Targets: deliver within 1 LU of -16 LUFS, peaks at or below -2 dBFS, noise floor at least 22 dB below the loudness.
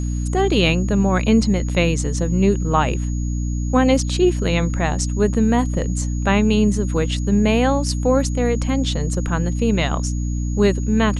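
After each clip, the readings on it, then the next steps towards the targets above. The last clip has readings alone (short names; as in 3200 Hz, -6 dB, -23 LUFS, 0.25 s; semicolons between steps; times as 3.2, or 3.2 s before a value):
hum 60 Hz; harmonics up to 300 Hz; hum level -20 dBFS; steady tone 6700 Hz; tone level -39 dBFS; loudness -19.0 LUFS; peak -3.5 dBFS; loudness target -16.0 LUFS
-> de-hum 60 Hz, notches 5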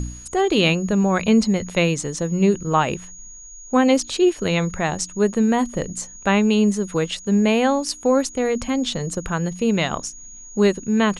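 hum none; steady tone 6700 Hz; tone level -39 dBFS
-> notch 6700 Hz, Q 30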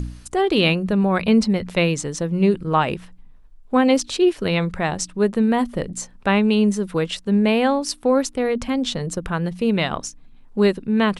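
steady tone none; loudness -20.5 LUFS; peak -4.5 dBFS; loudness target -16.0 LUFS
-> gain +4.5 dB; limiter -2 dBFS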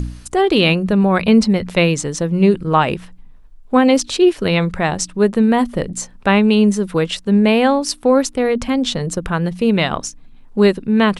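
loudness -16.0 LUFS; peak -2.0 dBFS; noise floor -41 dBFS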